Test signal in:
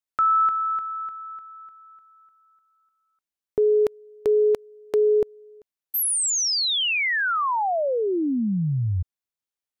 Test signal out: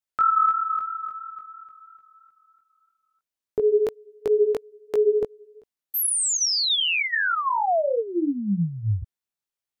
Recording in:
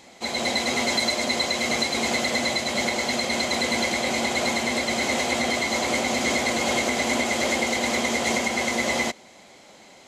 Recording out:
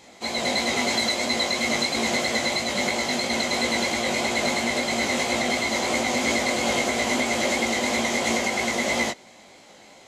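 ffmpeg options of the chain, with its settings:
-af "flanger=delay=17:depth=3.6:speed=3,volume=3dB"

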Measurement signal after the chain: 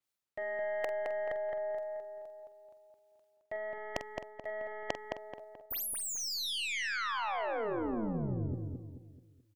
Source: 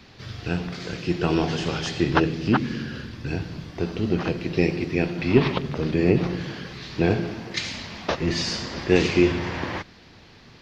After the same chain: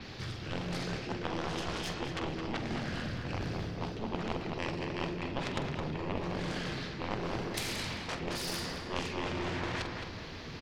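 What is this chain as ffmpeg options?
-filter_complex "[0:a]areverse,acompressor=threshold=-34dB:ratio=8,areverse,aeval=exprs='0.112*(cos(1*acos(clip(val(0)/0.112,-1,1)))-cos(1*PI/2))+0.00447*(cos(6*acos(clip(val(0)/0.112,-1,1)))-cos(6*PI/2))+0.0398*(cos(7*acos(clip(val(0)/0.112,-1,1)))-cos(7*PI/2))+0.00141*(cos(8*acos(clip(val(0)/0.112,-1,1)))-cos(8*PI/2))':c=same,tremolo=f=220:d=0.571,asplit=2[a][b];[b]adelay=46,volume=-12dB[c];[a][c]amix=inputs=2:normalize=0,asplit=2[d][e];[e]adelay=216,lowpass=f=2.6k:p=1,volume=-3.5dB,asplit=2[f][g];[g]adelay=216,lowpass=f=2.6k:p=1,volume=0.42,asplit=2[h][i];[i]adelay=216,lowpass=f=2.6k:p=1,volume=0.42,asplit=2[j][k];[k]adelay=216,lowpass=f=2.6k:p=1,volume=0.42,asplit=2[l][m];[m]adelay=216,lowpass=f=2.6k:p=1,volume=0.42[n];[f][h][j][l][n]amix=inputs=5:normalize=0[o];[d][o]amix=inputs=2:normalize=0,adynamicequalizer=threshold=0.00251:dfrequency=7000:dqfactor=0.7:tfrequency=7000:tqfactor=0.7:attack=5:release=100:ratio=0.375:range=2.5:mode=cutabove:tftype=highshelf,volume=3dB"

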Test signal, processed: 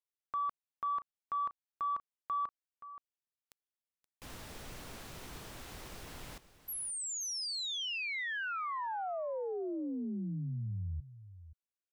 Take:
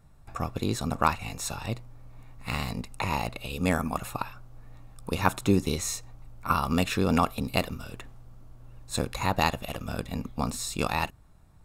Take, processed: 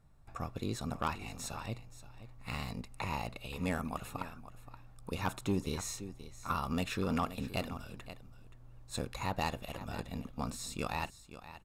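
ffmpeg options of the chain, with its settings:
-filter_complex "[0:a]asplit=2[a][b];[b]aecho=0:1:525:0.178[c];[a][c]amix=inputs=2:normalize=0,asoftclip=type=tanh:threshold=-15.5dB,highshelf=f=8.2k:g=-3.5,volume=-7.5dB"

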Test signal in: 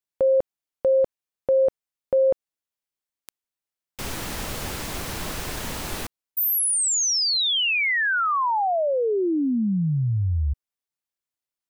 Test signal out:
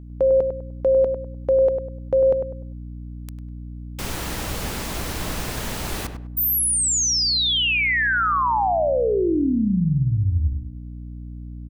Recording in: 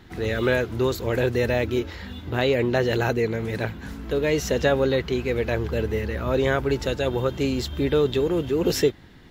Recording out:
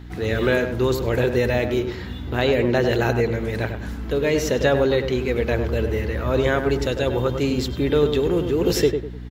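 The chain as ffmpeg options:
-filter_complex "[0:a]aeval=exprs='val(0)+0.0112*(sin(2*PI*60*n/s)+sin(2*PI*2*60*n/s)/2+sin(2*PI*3*60*n/s)/3+sin(2*PI*4*60*n/s)/4+sin(2*PI*5*60*n/s)/5)':c=same,asplit=2[a][b];[b]adelay=100,lowpass=f=1.6k:p=1,volume=-6.5dB,asplit=2[c][d];[d]adelay=100,lowpass=f=1.6k:p=1,volume=0.31,asplit=2[e][f];[f]adelay=100,lowpass=f=1.6k:p=1,volume=0.31,asplit=2[g][h];[h]adelay=100,lowpass=f=1.6k:p=1,volume=0.31[i];[a][c][e][g][i]amix=inputs=5:normalize=0,volume=1.5dB"

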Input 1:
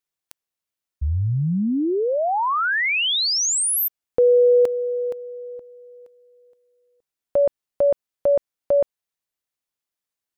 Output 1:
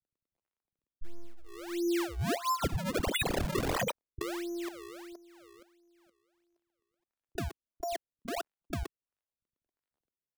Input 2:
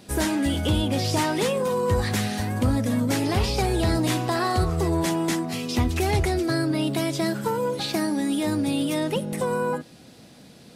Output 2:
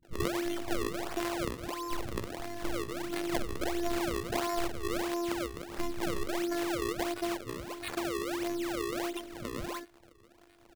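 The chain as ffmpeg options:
-filter_complex "[0:a]afftfilt=real='hypot(re,im)*cos(PI*b)':imag='0':win_size=512:overlap=0.75,acrusher=samples=33:mix=1:aa=0.000001:lfo=1:lforange=52.8:lforate=1.5,acrossover=split=190[a][b];[b]adelay=30[c];[a][c]amix=inputs=2:normalize=0,volume=-6dB"

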